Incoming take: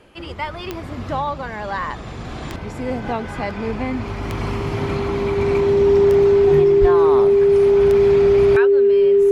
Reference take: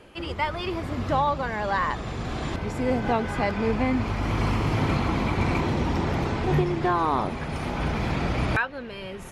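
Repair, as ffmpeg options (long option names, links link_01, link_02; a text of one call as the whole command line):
ffmpeg -i in.wav -filter_complex "[0:a]adeclick=threshold=4,bandreject=frequency=400:width=30,asplit=3[link_01][link_02][link_03];[link_01]afade=type=out:start_time=6.8:duration=0.02[link_04];[link_02]highpass=frequency=140:width=0.5412,highpass=frequency=140:width=1.3066,afade=type=in:start_time=6.8:duration=0.02,afade=type=out:start_time=6.92:duration=0.02[link_05];[link_03]afade=type=in:start_time=6.92:duration=0.02[link_06];[link_04][link_05][link_06]amix=inputs=3:normalize=0" out.wav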